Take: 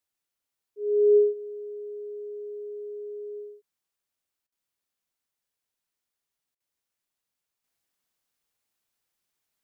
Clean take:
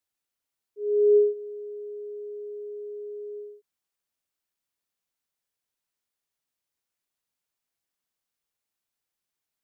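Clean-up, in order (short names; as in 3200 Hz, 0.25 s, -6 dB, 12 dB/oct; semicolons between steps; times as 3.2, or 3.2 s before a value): interpolate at 4.47/6.55, 50 ms; gain 0 dB, from 7.64 s -4.5 dB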